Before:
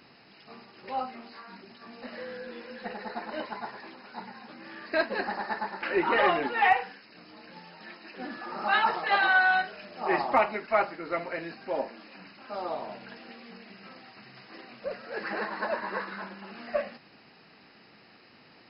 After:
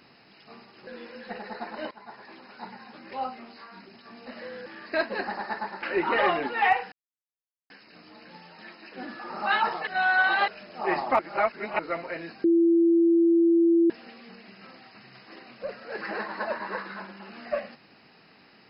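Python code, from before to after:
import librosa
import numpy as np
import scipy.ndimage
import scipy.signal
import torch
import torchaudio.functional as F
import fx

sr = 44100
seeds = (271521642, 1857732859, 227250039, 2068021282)

y = fx.edit(x, sr, fx.move(start_s=0.87, length_s=1.55, to_s=4.66),
    fx.fade_in_from(start_s=3.46, length_s=0.54, floor_db=-16.0),
    fx.insert_silence(at_s=6.92, length_s=0.78),
    fx.reverse_span(start_s=9.09, length_s=0.61),
    fx.reverse_span(start_s=10.41, length_s=0.6),
    fx.bleep(start_s=11.66, length_s=1.46, hz=336.0, db=-16.5), tone=tone)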